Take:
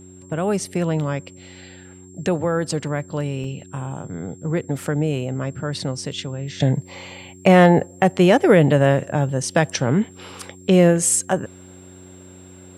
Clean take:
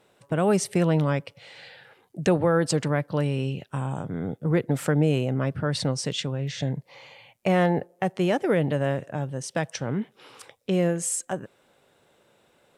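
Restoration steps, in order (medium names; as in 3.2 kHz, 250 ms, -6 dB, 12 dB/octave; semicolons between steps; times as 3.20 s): de-hum 92.3 Hz, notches 4; band-stop 7.5 kHz, Q 30; interpolate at 3.44 s, 3 ms; trim 0 dB, from 6.60 s -9.5 dB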